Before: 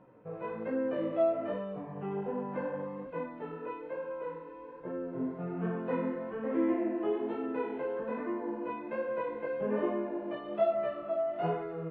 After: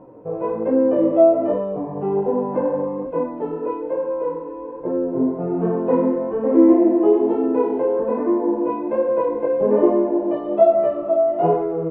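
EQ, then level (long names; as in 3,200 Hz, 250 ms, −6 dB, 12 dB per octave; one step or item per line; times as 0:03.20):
low-shelf EQ 130 Hz +5.5 dB
low-shelf EQ 290 Hz +10 dB
flat-topped bell 540 Hz +12.5 dB 2.3 octaves
0.0 dB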